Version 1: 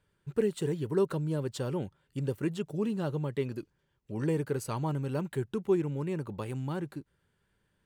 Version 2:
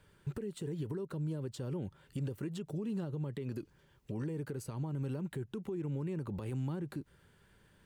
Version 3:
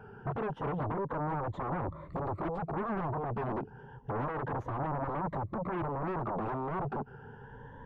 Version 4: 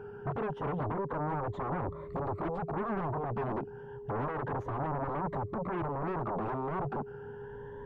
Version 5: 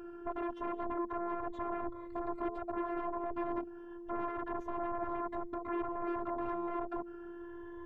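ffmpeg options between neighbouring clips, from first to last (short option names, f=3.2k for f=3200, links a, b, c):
-filter_complex "[0:a]acompressor=threshold=-39dB:ratio=6,alimiter=level_in=15.5dB:limit=-24dB:level=0:latency=1:release=85,volume=-15.5dB,acrossover=split=400[a][b];[b]acompressor=threshold=-57dB:ratio=6[c];[a][c]amix=inputs=2:normalize=0,volume=9.5dB"
-filter_complex "[0:a]afftfilt=real='re*pow(10,18/40*sin(2*PI*(1.1*log(max(b,1)*sr/1024/100)/log(2)-(0.29)*(pts-256)/sr)))':imag='im*pow(10,18/40*sin(2*PI*(1.1*log(max(b,1)*sr/1024/100)/log(2)-(0.29)*(pts-256)/sr)))':win_size=1024:overlap=0.75,asplit=2[a][b];[b]aeval=exprs='0.0708*sin(PI/2*8.91*val(0)/0.0708)':c=same,volume=-6dB[c];[a][c]amix=inputs=2:normalize=0,lowpass=f=1k:t=q:w=1.8,volume=-5dB"
-af "aeval=exprs='val(0)+0.00708*sin(2*PI*410*n/s)':c=same"
-af "afftfilt=real='hypot(re,im)*cos(PI*b)':imag='0':win_size=512:overlap=0.75,volume=1dB"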